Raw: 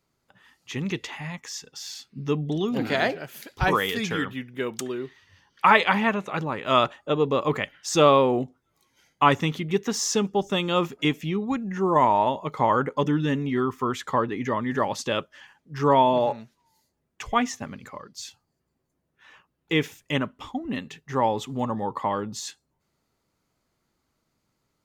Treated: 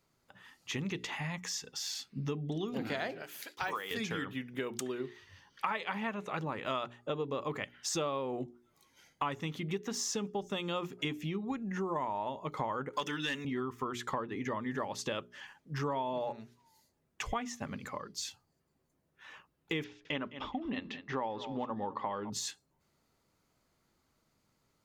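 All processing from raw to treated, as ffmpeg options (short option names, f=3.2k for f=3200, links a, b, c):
-filter_complex "[0:a]asettb=1/sr,asplit=3[a][b][c];[a]atrim=end=3.224[d];[b]atrim=start=3.22:end=3.91,asetpts=PTS-STARTPTS,afade=t=in:d=0.004:c=qsin,afade=t=out:st=0.686:d=0.004:c=qsin,deesser=0.8,highpass=f=900:p=1,agate=range=-33dB:threshold=-57dB:ratio=3:release=100:detection=peak[e];[c]atrim=start=3.906[f];[d][e]acrossfade=d=0.004:c1=hsin:c2=qsin[g];[g][f]acrossfade=d=0.004:c1=qsin:c2=hsin,asettb=1/sr,asplit=3[h][i][j];[h]atrim=end=12.934[k];[i]atrim=start=12.93:end=13.45,asetpts=PTS-STARTPTS,afade=t=in:d=0.004:c=qsin,afade=t=out:st=0.516:d=0.004:c=qsin,highpass=f=220:p=1,tiltshelf=f=910:g=-9.5,aeval=exprs='0.266*sin(PI/2*1.41*val(0)/0.266)':c=same[l];[j]atrim=start=13.446[m];[k][l]acrossfade=d=0.004:c1=hsin:c2=qsin[n];[n][m]acrossfade=d=0.004:c1=qsin:c2=hsin,asettb=1/sr,asplit=3[o][p][q];[o]atrim=end=19.844[r];[p]atrim=start=19.84:end=22.3,asetpts=PTS-STARTPTS,afade=t=in:d=0.004:c=qsin,afade=t=out:st=2.456:d=0.004:c=qsin,lowpass=f=4.7k:w=0.5412,lowpass=f=4.7k:w=1.3066,equalizer=f=130:w=1.7:g=-7.5,aecho=1:1:210|420:0.141|0.0226,atrim=end_sample=108486[s];[q]atrim=start=22.296[t];[r][s]acrossfade=d=0.004:c1=hsin:c2=qsin[u];[u][t]acrossfade=d=0.004:c1=qsin:c2=hsin,bandreject=f=60:t=h:w=6,bandreject=f=120:t=h:w=6,bandreject=f=180:t=h:w=6,bandreject=f=240:t=h:w=6,bandreject=f=300:t=h:w=6,bandreject=f=360:t=h:w=6,bandreject=f=420:t=h:w=6,acompressor=threshold=-34dB:ratio=5"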